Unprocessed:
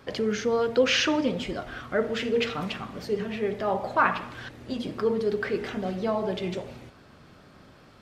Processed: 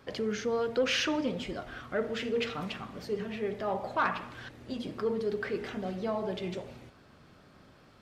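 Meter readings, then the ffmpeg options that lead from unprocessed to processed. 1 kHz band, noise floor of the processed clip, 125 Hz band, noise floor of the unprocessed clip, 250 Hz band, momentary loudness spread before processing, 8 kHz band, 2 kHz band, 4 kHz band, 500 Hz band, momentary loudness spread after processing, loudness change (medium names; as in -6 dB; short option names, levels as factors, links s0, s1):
-6.0 dB, -58 dBFS, -5.0 dB, -53 dBFS, -5.5 dB, 13 LU, -5.5 dB, -6.0 dB, -5.5 dB, -5.5 dB, 12 LU, -5.5 dB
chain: -af "asoftclip=type=tanh:threshold=0.211,volume=0.562"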